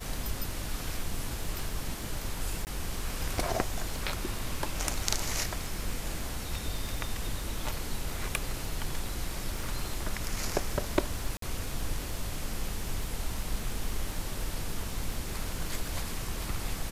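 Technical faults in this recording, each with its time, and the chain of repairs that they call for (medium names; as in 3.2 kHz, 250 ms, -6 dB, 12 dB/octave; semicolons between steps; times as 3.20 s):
crackle 40 per s -37 dBFS
2.65–2.67 s: dropout 19 ms
11.37–11.42 s: dropout 53 ms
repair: de-click; interpolate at 2.65 s, 19 ms; interpolate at 11.37 s, 53 ms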